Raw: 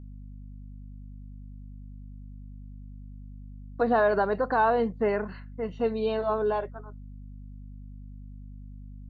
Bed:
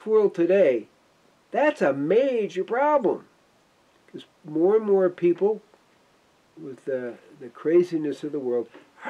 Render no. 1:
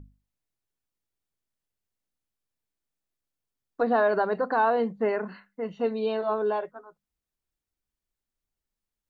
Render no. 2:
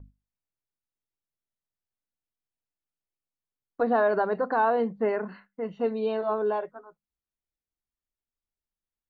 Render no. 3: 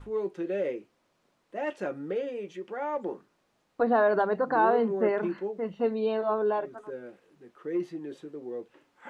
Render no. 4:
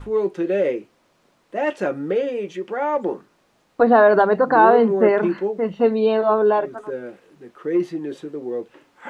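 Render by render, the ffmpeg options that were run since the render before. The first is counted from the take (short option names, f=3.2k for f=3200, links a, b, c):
-af "bandreject=f=50:t=h:w=6,bandreject=f=100:t=h:w=6,bandreject=f=150:t=h:w=6,bandreject=f=200:t=h:w=6,bandreject=f=250:t=h:w=6"
-af "agate=range=-7dB:threshold=-53dB:ratio=16:detection=peak,highshelf=f=3.8k:g=-9.5"
-filter_complex "[1:a]volume=-11.5dB[a];[0:a][a]amix=inputs=2:normalize=0"
-af "volume=10dB"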